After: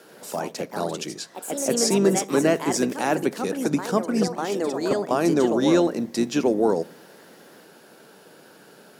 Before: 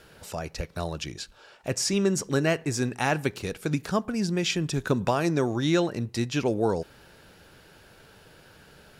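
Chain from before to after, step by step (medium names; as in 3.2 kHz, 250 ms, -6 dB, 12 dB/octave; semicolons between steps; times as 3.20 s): octave divider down 2 oct, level -1 dB; high-pass 200 Hz 24 dB/octave; peaking EQ 2.6 kHz -7.5 dB 2.1 oct; in parallel at -1.5 dB: peak limiter -19.5 dBFS, peak gain reduction 7 dB; 4.28–5.11 s: on the sum: level held to a coarse grid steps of 20 dB; on a send at -22 dB: reverberation RT60 0.75 s, pre-delay 3 ms; on the sum: ever faster or slower copies 87 ms, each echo +3 st, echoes 2, each echo -6 dB; 2.19–3.44 s: three bands expanded up and down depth 40%; trim +1.5 dB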